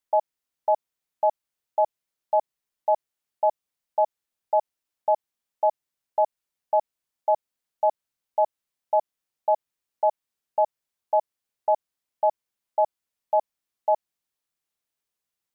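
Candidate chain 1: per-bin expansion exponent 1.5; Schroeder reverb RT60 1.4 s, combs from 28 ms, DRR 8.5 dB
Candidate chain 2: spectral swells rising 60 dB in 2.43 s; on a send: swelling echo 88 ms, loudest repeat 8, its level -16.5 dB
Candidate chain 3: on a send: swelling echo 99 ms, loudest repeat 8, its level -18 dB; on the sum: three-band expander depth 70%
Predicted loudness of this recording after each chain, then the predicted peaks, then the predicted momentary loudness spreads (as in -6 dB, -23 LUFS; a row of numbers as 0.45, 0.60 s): -28.0, -22.5, -26.5 LUFS; -12.5, -9.5, -10.0 dBFS; 12, 3, 15 LU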